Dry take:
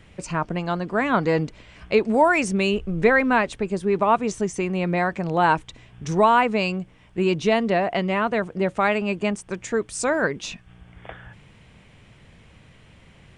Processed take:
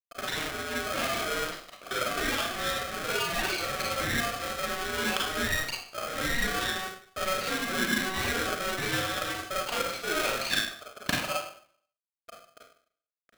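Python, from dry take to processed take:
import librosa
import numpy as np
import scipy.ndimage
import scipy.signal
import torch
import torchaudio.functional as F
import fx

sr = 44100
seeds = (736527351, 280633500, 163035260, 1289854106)

y = fx.bin_expand(x, sr, power=2.0)
y = fx.fuzz(y, sr, gain_db=48.0, gate_db=-57.0)
y = fx.over_compress(y, sr, threshold_db=-25.0, ratio=-1.0)
y = scipy.signal.sosfilt(scipy.signal.cheby1(3, 1.0, [270.0, 3100.0], 'bandpass', fs=sr, output='sos'), y)
y = fx.rev_schroeder(y, sr, rt60_s=0.54, comb_ms=33, drr_db=-4.0)
y = y * np.sign(np.sin(2.0 * np.pi * 940.0 * np.arange(len(y)) / sr))
y = y * 10.0 ** (-6.5 / 20.0)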